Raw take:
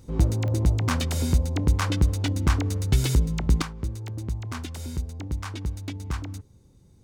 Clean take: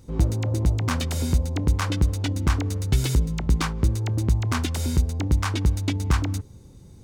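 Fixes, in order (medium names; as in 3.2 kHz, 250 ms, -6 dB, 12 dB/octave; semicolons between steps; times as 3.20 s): de-click; gain correction +9 dB, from 3.62 s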